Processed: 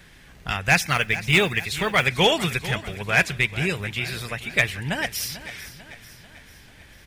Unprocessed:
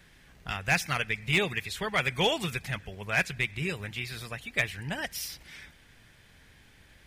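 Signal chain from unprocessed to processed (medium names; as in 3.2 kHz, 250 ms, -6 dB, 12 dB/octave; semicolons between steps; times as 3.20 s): 0.87–2.04 s: modulation noise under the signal 29 dB; on a send: feedback delay 443 ms, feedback 52%, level -15 dB; on the sum: trim +7.5 dB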